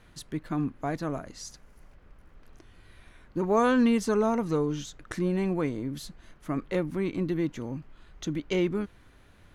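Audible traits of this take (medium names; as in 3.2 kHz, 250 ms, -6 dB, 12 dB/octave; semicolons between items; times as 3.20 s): noise floor -57 dBFS; spectral tilt -6.0 dB/octave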